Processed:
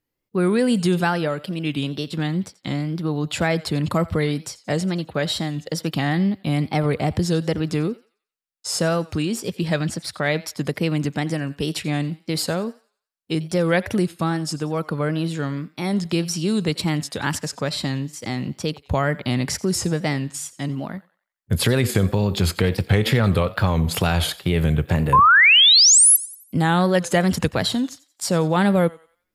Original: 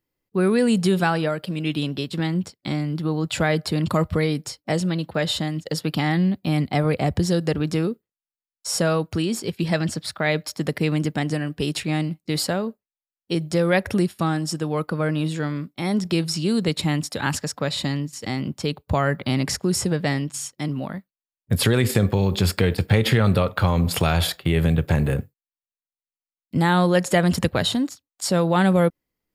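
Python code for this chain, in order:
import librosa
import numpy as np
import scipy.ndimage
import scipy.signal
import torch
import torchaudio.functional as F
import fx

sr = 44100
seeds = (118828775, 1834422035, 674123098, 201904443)

y = fx.spec_paint(x, sr, seeds[0], shape='rise', start_s=25.13, length_s=1.04, low_hz=970.0, high_hz=12000.0, level_db=-12.0)
y = fx.echo_thinned(y, sr, ms=89, feedback_pct=39, hz=740.0, wet_db=-18.5)
y = fx.wow_flutter(y, sr, seeds[1], rate_hz=2.1, depth_cents=100.0)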